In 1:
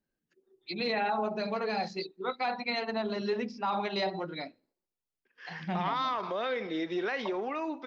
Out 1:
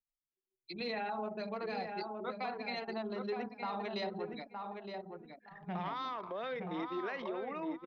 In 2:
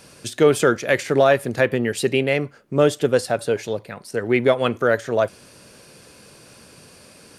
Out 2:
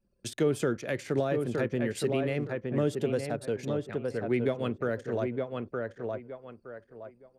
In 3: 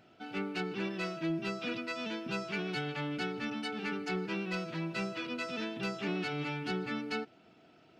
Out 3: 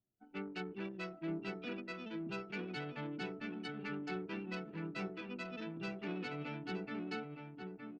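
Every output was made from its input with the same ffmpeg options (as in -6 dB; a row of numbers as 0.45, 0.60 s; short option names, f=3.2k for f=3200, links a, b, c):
-filter_complex "[0:a]anlmdn=2.51,asplit=2[a][b];[b]adelay=916,lowpass=f=1.9k:p=1,volume=-5dB,asplit=2[c][d];[d]adelay=916,lowpass=f=1.9k:p=1,volume=0.22,asplit=2[e][f];[f]adelay=916,lowpass=f=1.9k:p=1,volume=0.22[g];[a][c][e][g]amix=inputs=4:normalize=0,acrossover=split=370[h][i];[i]acompressor=threshold=-29dB:ratio=3[j];[h][j]amix=inputs=2:normalize=0,volume=-6.5dB"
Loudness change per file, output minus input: -7.0, -11.0, -7.0 LU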